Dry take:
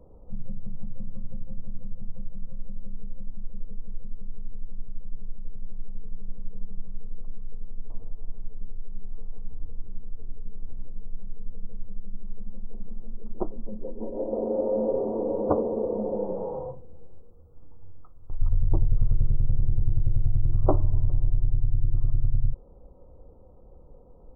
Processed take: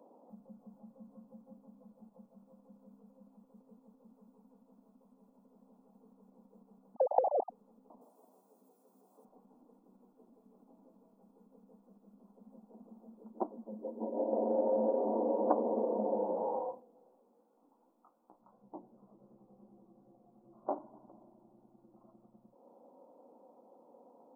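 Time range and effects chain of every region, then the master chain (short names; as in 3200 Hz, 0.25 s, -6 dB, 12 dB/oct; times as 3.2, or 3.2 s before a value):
6.95–7.5 sine-wave speech + elliptic low-pass 810 Hz, stop band 50 dB
8.01–9.25 HPF 190 Hz + tone controls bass -7 dB, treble +13 dB
16.8–20.78 notches 60/120/180/240/300/360/420/480/540 Hz + compressor 1.5:1, threshold -26 dBFS + chorus 2.7 Hz, delay 15 ms, depth 6.7 ms
whole clip: compressor, threshold -23 dBFS; elliptic high-pass 240 Hz, stop band 60 dB; comb 1.2 ms, depth 52%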